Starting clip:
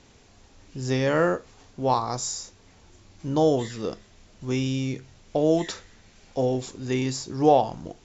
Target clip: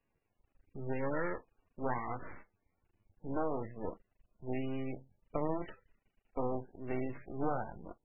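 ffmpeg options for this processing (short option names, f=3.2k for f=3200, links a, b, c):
-af "afftdn=nr=17:nf=-34,acompressor=threshold=-22dB:ratio=8,aeval=exprs='max(val(0),0)':c=same,volume=-4.5dB" -ar 16000 -c:a libmp3lame -b:a 8k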